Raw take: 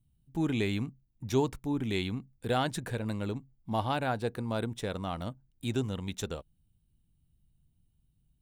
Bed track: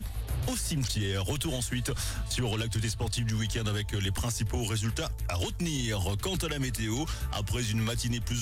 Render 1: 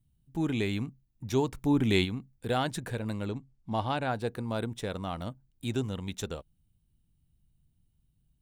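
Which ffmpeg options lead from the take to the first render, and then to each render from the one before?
-filter_complex "[0:a]asplit=3[a][b][c];[a]afade=t=out:st=1.56:d=0.02[d];[b]acontrast=66,afade=t=in:st=1.56:d=0.02,afade=t=out:st=2.04:d=0.02[e];[c]afade=t=in:st=2.04:d=0.02[f];[d][e][f]amix=inputs=3:normalize=0,asettb=1/sr,asplit=3[g][h][i];[g]atrim=end=3.254[j];[h]atrim=start=3.25:end=4.13,asetpts=PTS-STARTPTS,afade=t=in:d=0.004:c=qsin,afade=t=out:st=0.876:d=0.004:c=qsin,lowpass=8.4k[k];[i]atrim=start=4.126[l];[j][k]acrossfade=d=0.004:c1=hsin:c2=qsin[m];[m][l]acrossfade=d=0.004:c1=qsin:c2=hsin"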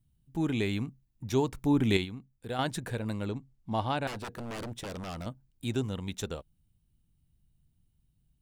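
-filter_complex "[0:a]asettb=1/sr,asplit=3[a][b][c];[a]atrim=end=4.074[d];[b]atrim=start=4.07:end=5.26,asetpts=PTS-STARTPTS,afade=t=in:d=0.004:c=qsin,afade=t=out:st=1.186:d=0.004:c=qsin,aeval=exprs='0.0224*(abs(mod(val(0)/0.0224+3,4)-2)-1)':c=same[e];[c]atrim=start=5.256[f];[d][e]acrossfade=d=0.004:c1=hsin:c2=qsin[g];[g][f]acrossfade=d=0.004:c1=qsin:c2=hsin,asplit=3[h][i][j];[h]atrim=end=1.972[k];[i]atrim=start=1.968:end=2.592,asetpts=PTS-STARTPTS,volume=-6.5dB[l];[j]atrim=start=2.588[m];[k][l]acrossfade=d=0.004:c1=hsin:c2=hsin[n];[n][m]acrossfade=d=0.004:c1=hsin:c2=hsin"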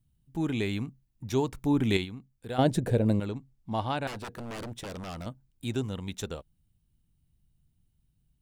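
-filter_complex "[0:a]asettb=1/sr,asplit=3[a][b][c];[a]atrim=end=2.584[d];[b]atrim=start=2.58:end=3.2,asetpts=PTS-STARTPTS,afade=t=in:d=0.004:c=qsin,afade=t=out:st=0.616:d=0.004:c=qsin,lowshelf=f=790:t=q:w=1.5:g=9[e];[c]atrim=start=3.196[f];[d][e]acrossfade=d=0.004:c1=hsin:c2=qsin[g];[g][f]acrossfade=d=0.004:c1=qsin:c2=hsin"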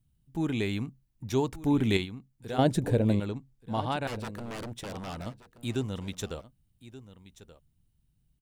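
-af "aecho=1:1:1179:0.15"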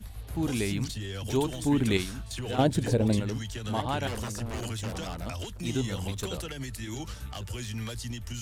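-filter_complex "[1:a]volume=-6dB[a];[0:a][a]amix=inputs=2:normalize=0"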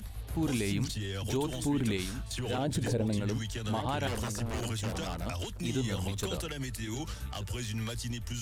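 -af "alimiter=limit=-22dB:level=0:latency=1:release=50,acompressor=mode=upward:threshold=-48dB:ratio=2.5"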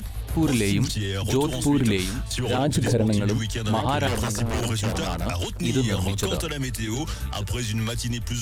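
-af "volume=9dB"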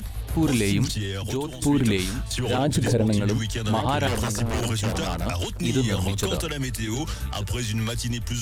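-filter_complex "[0:a]asplit=2[a][b];[a]atrim=end=1.62,asetpts=PTS-STARTPTS,afade=t=out:st=0.89:d=0.73:silence=0.298538[c];[b]atrim=start=1.62,asetpts=PTS-STARTPTS,afade=t=in:d=0.004:c=hsin:silence=0.298538[d];[c][d]concat=n=2:v=0:a=1"

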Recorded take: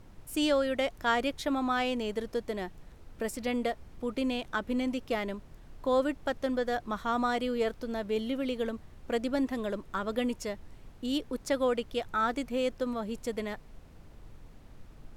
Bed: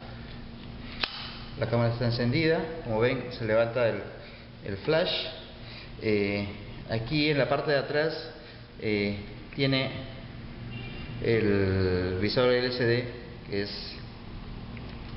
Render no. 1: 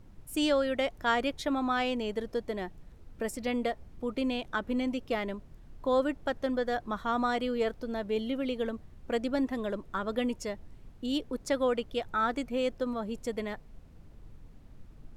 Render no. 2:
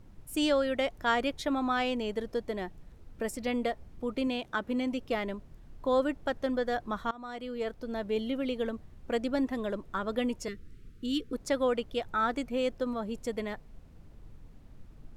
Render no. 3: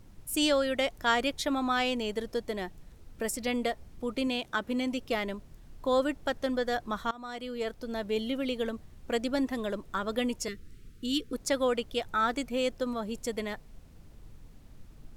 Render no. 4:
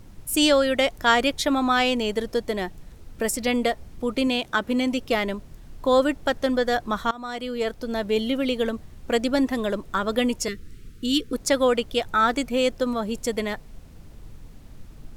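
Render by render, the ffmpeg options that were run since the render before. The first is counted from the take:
-af "afftdn=nr=6:nf=-52"
-filter_complex "[0:a]asettb=1/sr,asplit=3[a][b][c];[a]atrim=end=4.274[d];[b]atrim=start=4.27:end=4.93,asetpts=PTS-STARTPTS,afade=t=in:d=0.004:c=qsin,afade=t=out:st=0.656:d=0.004:c=qsin,highpass=f=91:p=1[e];[c]atrim=start=4.926[f];[d][e]acrossfade=d=0.004:c1=hsin:c2=qsin[g];[g][f]acrossfade=d=0.004:c1=qsin:c2=hsin,asettb=1/sr,asplit=3[h][i][j];[h]atrim=end=10.484[k];[i]atrim=start=10.48:end=11.33,asetpts=PTS-STARTPTS,afade=t=in:d=0.004:c=qsin,afade=t=out:st=0.846:d=0.004:c=qsin,asuperstop=centerf=770:order=12:qfactor=1.1[l];[j]atrim=start=11.326[m];[k][l]acrossfade=d=0.004:c1=hsin:c2=qsin[n];[n][m]acrossfade=d=0.004:c1=qsin:c2=hsin,asplit=2[o][p];[o]atrim=end=7.11,asetpts=PTS-STARTPTS,afade=t=out:st=7.106:d=0.004:c=hsin:silence=0.0794328[q];[p]atrim=start=7.11,asetpts=PTS-STARTPTS,afade=t=in:d=0.92:silence=0.0794328[r];[q][r]concat=n=2:v=0:a=1"
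-af "highshelf=f=3.2k:g=9"
-af "volume=7.5dB"

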